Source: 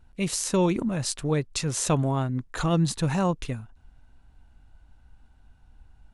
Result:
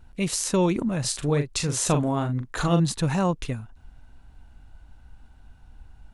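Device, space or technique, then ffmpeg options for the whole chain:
parallel compression: -filter_complex "[0:a]asplit=2[s0][s1];[s1]acompressor=threshold=0.01:ratio=6,volume=0.891[s2];[s0][s2]amix=inputs=2:normalize=0,asettb=1/sr,asplit=3[s3][s4][s5];[s3]atrim=end=1.004[s6];[s4]atrim=start=1:end=2.8,asetpts=PTS-STARTPTS,afade=t=in:d=0.004:c=qsin,afade=t=out:st=1.796:d=0.004:c=qsin,asplit=2[s7][s8];[s8]adelay=41,volume=0.422[s9];[s7][s9]amix=inputs=2:normalize=0,atrim=end_sample=79380[s10];[s5]atrim=start=2.796[s11];[s6][s10]acrossfade=d=0.004:c1=hsin:c2=qsin[s12];[s12][s11]acrossfade=d=0.004:c1=qsin:c2=hsin"

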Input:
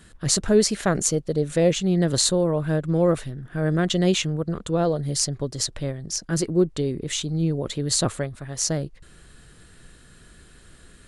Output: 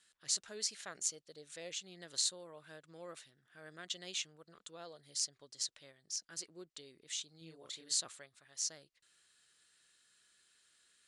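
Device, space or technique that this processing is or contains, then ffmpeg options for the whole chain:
piezo pickup straight into a mixer: -filter_complex "[0:a]lowpass=5700,aderivative,asettb=1/sr,asplit=3[s0][s1][s2];[s0]atrim=end=7.384[s3];[s1]atrim=start=7.38:end=8,asetpts=PTS-STARTPTS,afade=t=in:d=0.004:c=qsin,afade=t=out:st=0.616:d=0.004:c=qsin,asplit=2[s4][s5];[s5]adelay=31,volume=0.794[s6];[s4][s6]amix=inputs=2:normalize=0,atrim=end_sample=27342[s7];[s2]atrim=start=7.996[s8];[s3][s7]acrossfade=d=0.004:c1=hsin:c2=qsin[s9];[s9][s8]acrossfade=d=0.004:c1=qsin:c2=hsin,volume=0.473"

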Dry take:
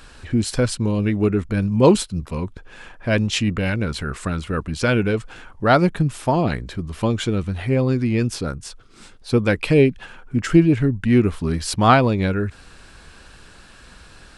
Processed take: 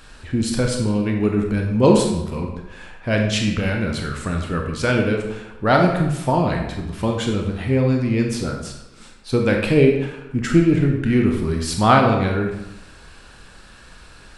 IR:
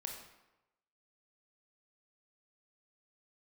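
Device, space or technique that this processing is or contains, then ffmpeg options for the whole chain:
bathroom: -filter_complex "[1:a]atrim=start_sample=2205[s0];[0:a][s0]afir=irnorm=-1:irlink=0,volume=1.33"

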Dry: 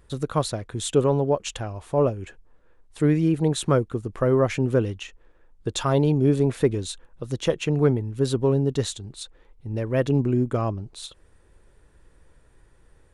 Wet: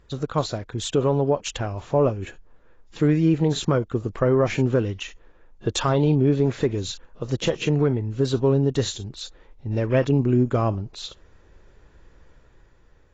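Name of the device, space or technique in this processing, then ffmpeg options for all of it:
low-bitrate web radio: -filter_complex "[0:a]asettb=1/sr,asplit=3[s0][s1][s2];[s0]atrim=end=6.074[s3];[s1]atrim=start=6.07:end=6.47,asetpts=PTS-STARTPTS,afade=t=in:d=0.004:c=qsin,afade=t=out:st=0.396:d=0.004:c=qsin,lowpass=5100[s4];[s2]atrim=start=6.466[s5];[s3][s4]acrossfade=d=0.004:c1=hsin:c2=qsin[s6];[s6][s5]acrossfade=d=0.004:c1=qsin:c2=hsin,dynaudnorm=f=130:g=13:m=1.58,alimiter=limit=0.299:level=0:latency=1:release=239" -ar 16000 -c:a aac -b:a 24k

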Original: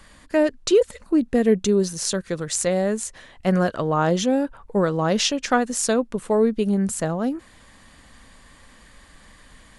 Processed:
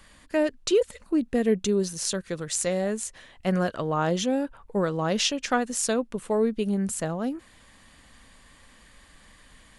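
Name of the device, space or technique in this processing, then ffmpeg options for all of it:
presence and air boost: -filter_complex "[0:a]asettb=1/sr,asplit=3[s0][s1][s2];[s0]atrim=end=2.494[s3];[s1]atrim=start=2.49:end=2.91,asetpts=PTS-STARTPTS,afade=t=in:d=0.004:c=qsin,afade=t=out:st=0.416:d=0.004:c=qsin,bandreject=f=249.1:t=h:w=4,bandreject=f=498.2:t=h:w=4,bandreject=f=747.3:t=h:w=4,bandreject=f=996.4:t=h:w=4,bandreject=f=1245.5:t=h:w=4,bandreject=f=1494.6:t=h:w=4,bandreject=f=1743.7:t=h:w=4,bandreject=f=1992.8:t=h:w=4,bandreject=f=2241.9:t=h:w=4,bandreject=f=2491:t=h:w=4,bandreject=f=2740.1:t=h:w=4,bandreject=f=2989.2:t=h:w=4,bandreject=f=3238.3:t=h:w=4,bandreject=f=3487.4:t=h:w=4,bandreject=f=3736.5:t=h:w=4,bandreject=f=3985.6:t=h:w=4,bandreject=f=4234.7:t=h:w=4,bandreject=f=4483.8:t=h:w=4,bandreject=f=4732.9:t=h:w=4,bandreject=f=4982:t=h:w=4,bandreject=f=5231.1:t=h:w=4,bandreject=f=5480.2:t=h:w=4,bandreject=f=5729.3:t=h:w=4,bandreject=f=5978.4:t=h:w=4,bandreject=f=6227.5:t=h:w=4,bandreject=f=6476.6:t=h:w=4,bandreject=f=6725.7:t=h:w=4,bandreject=f=6974.8:t=h:w=4[s4];[s2]atrim=start=2.906[s5];[s3][s4]acrossfade=d=0.004:c1=hsin:c2=qsin[s6];[s6][s5]acrossfade=d=0.004:c1=qsin:c2=hsin,equalizer=f=2800:t=o:w=0.9:g=3,highshelf=f=9200:g=4.5,volume=0.562"

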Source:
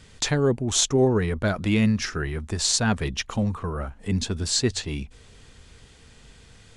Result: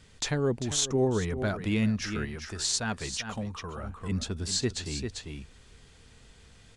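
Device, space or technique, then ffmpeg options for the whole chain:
ducked delay: -filter_complex "[0:a]asplit=3[s0][s1][s2];[s1]adelay=395,volume=0.631[s3];[s2]apad=whole_len=315950[s4];[s3][s4]sidechaincompress=threshold=0.0282:ratio=8:attack=16:release=196[s5];[s0][s5]amix=inputs=2:normalize=0,asettb=1/sr,asplit=3[s6][s7][s8];[s6]atrim=end=2.254[s9];[s7]atrim=start=2.25:end=3.84,asetpts=PTS-STARTPTS,afade=t=in:d=0.004:c=qsin,afade=t=out:st=1.586:d=0.004:c=qsin,lowshelf=f=450:g=-6[s10];[s8]atrim=start=3.836[s11];[s9][s10]acrossfade=d=0.004:c1=hsin:c2=qsin[s12];[s12][s11]acrossfade=d=0.004:c1=qsin:c2=hsin,volume=0.501"

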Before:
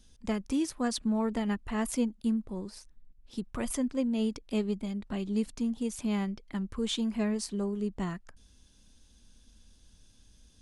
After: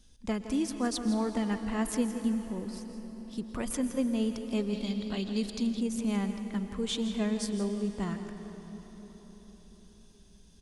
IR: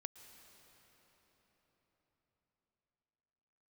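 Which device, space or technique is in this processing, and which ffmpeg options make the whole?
cave: -filter_complex "[0:a]aecho=1:1:166:0.224[s0];[1:a]atrim=start_sample=2205[s1];[s0][s1]afir=irnorm=-1:irlink=0,asettb=1/sr,asplit=3[s2][s3][s4];[s2]atrim=end=4.734[s5];[s3]atrim=start=4.73:end=5.81,asetpts=PTS-STARTPTS,afade=t=in:d=0.004:c=qsin,afade=t=out:st=1.076:d=0.004:c=qsin,equalizer=f=4000:w=1.5:g=13.5[s6];[s4]atrim=start=5.806[s7];[s5][s6]acrossfade=d=0.004:c1=hsin:c2=qsin[s8];[s8][s7]acrossfade=d=0.004:c1=qsin:c2=hsin,volume=1.68"

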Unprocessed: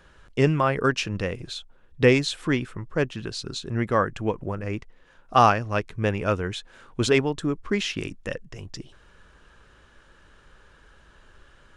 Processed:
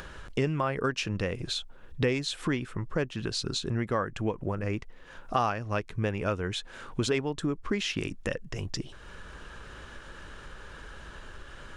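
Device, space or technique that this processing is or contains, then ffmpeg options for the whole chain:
upward and downward compression: -af "acompressor=mode=upward:threshold=0.00794:ratio=2.5,acompressor=threshold=0.02:ratio=3,volume=1.78"

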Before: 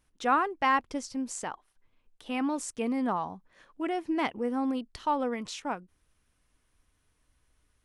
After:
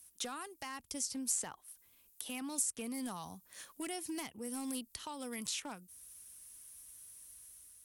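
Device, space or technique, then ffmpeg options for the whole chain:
FM broadcast chain: -filter_complex "[0:a]highpass=46,dynaudnorm=f=530:g=3:m=1.58,acrossover=split=190|3200[s0][s1][s2];[s0]acompressor=threshold=0.0112:ratio=4[s3];[s1]acompressor=threshold=0.0126:ratio=4[s4];[s2]acompressor=threshold=0.00178:ratio=4[s5];[s3][s4][s5]amix=inputs=3:normalize=0,aemphasis=mode=production:type=75fm,alimiter=level_in=1.33:limit=0.0631:level=0:latency=1:release=459,volume=0.75,asoftclip=type=hard:threshold=0.0299,lowpass=f=15000:w=0.5412,lowpass=f=15000:w=1.3066,aemphasis=mode=production:type=75fm,volume=0.596"

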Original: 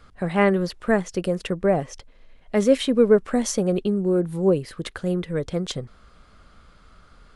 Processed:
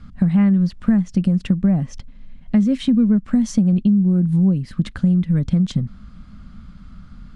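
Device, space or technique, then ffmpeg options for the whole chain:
jukebox: -af "lowpass=7700,lowshelf=f=300:t=q:w=3:g=12,acompressor=threshold=0.2:ratio=5"

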